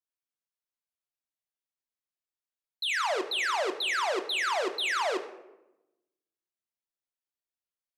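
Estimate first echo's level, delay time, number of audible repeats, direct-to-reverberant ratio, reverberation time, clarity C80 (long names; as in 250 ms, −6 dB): no echo audible, no echo audible, no echo audible, 5.5 dB, 0.95 s, 13.0 dB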